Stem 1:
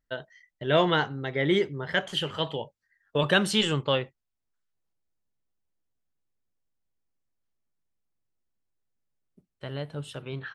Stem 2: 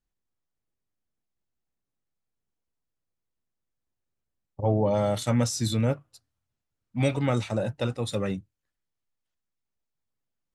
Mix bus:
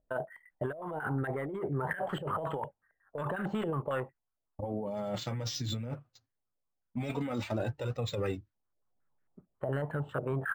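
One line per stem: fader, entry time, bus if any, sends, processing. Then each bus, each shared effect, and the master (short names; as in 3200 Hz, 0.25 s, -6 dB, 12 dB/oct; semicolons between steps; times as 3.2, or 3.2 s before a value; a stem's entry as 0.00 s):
0.0 dB, 0.00 s, no send, limiter -19.5 dBFS, peak gain reduction 11.5 dB; soft clip -23 dBFS, distortion -18 dB; stepped low-pass 11 Hz 620–1700 Hz; auto duck -10 dB, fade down 1.55 s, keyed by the second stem
-2.0 dB, 0.00 s, no send, gate with hold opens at -41 dBFS; steep low-pass 7500 Hz 36 dB/oct; flange 0.25 Hz, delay 1.5 ms, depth 6.9 ms, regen -13%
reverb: off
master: negative-ratio compressor -34 dBFS, ratio -1; decimation joined by straight lines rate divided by 4×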